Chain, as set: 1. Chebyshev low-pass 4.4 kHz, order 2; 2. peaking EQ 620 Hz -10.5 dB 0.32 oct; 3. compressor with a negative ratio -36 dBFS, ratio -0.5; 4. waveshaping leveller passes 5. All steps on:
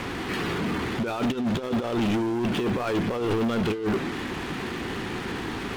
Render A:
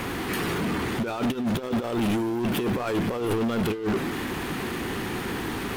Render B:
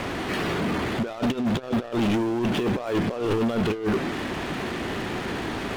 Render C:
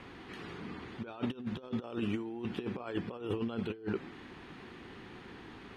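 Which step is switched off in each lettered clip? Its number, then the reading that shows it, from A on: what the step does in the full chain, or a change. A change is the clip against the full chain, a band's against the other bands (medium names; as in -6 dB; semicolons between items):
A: 1, 8 kHz band +4.5 dB; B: 2, loudness change +1.0 LU; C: 4, crest factor change +12.5 dB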